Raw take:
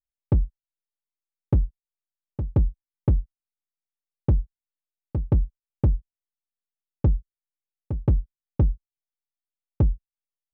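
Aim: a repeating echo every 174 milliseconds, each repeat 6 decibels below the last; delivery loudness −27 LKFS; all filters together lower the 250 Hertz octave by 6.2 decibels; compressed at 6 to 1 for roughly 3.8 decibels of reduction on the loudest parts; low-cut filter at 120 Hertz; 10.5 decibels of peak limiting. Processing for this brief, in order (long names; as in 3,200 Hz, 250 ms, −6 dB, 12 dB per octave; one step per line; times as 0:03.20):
high-pass filter 120 Hz
parametric band 250 Hz −9 dB
downward compressor 6 to 1, threshold −24 dBFS
brickwall limiter −25.5 dBFS
repeating echo 174 ms, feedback 50%, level −6 dB
level +16.5 dB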